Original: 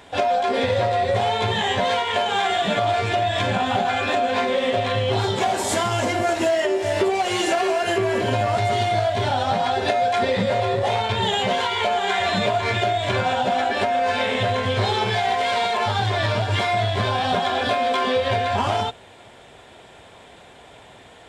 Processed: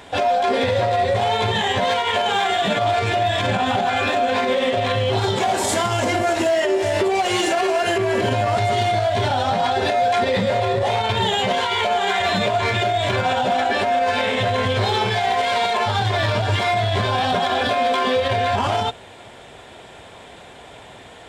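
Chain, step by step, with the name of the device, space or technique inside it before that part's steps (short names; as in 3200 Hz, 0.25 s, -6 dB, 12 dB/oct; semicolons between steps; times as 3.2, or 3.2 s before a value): limiter into clipper (limiter -15.5 dBFS, peak gain reduction 7.5 dB; hard clip -17 dBFS, distortion -30 dB); gain +4.5 dB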